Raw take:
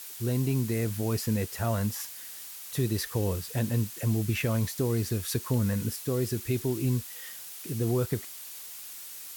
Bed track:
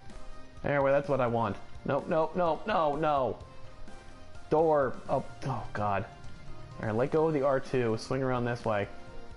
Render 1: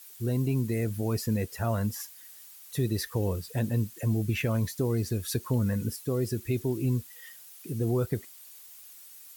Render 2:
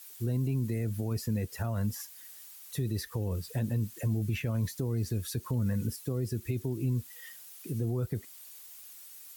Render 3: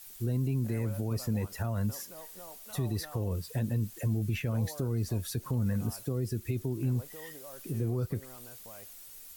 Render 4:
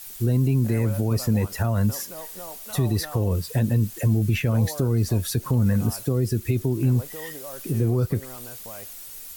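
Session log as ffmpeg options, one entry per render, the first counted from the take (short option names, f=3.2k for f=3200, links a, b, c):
-af "afftdn=nr=10:nf=-43"
-filter_complex "[0:a]alimiter=limit=-21dB:level=0:latency=1:release=22,acrossover=split=220[a][b];[b]acompressor=threshold=-39dB:ratio=2.5[c];[a][c]amix=inputs=2:normalize=0"
-filter_complex "[1:a]volume=-22dB[a];[0:a][a]amix=inputs=2:normalize=0"
-af "volume=9.5dB"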